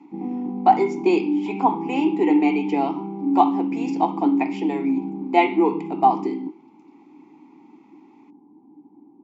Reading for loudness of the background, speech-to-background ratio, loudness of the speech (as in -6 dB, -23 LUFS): -27.0 LUFS, 5.0 dB, -22.0 LUFS